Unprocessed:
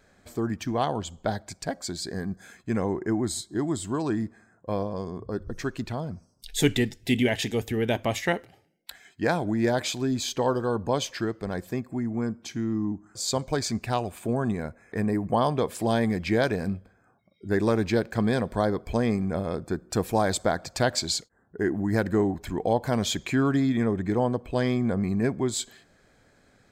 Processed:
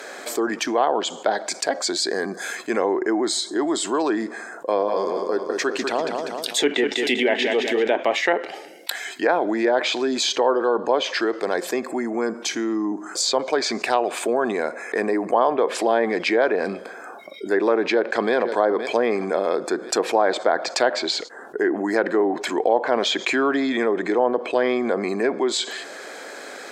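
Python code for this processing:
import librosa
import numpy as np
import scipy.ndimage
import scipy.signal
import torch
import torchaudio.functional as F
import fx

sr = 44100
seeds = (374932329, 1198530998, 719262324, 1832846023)

y = fx.echo_feedback(x, sr, ms=196, feedback_pct=46, wet_db=-8.0, at=(4.79, 7.93), fade=0.02)
y = fx.echo_throw(y, sr, start_s=17.86, length_s=0.48, ms=520, feedback_pct=35, wet_db=-16.5)
y = scipy.signal.sosfilt(scipy.signal.butter(4, 350.0, 'highpass', fs=sr, output='sos'), y)
y = fx.env_lowpass_down(y, sr, base_hz=1900.0, full_db=-22.5)
y = fx.env_flatten(y, sr, amount_pct=50)
y = y * 10.0 ** (5.0 / 20.0)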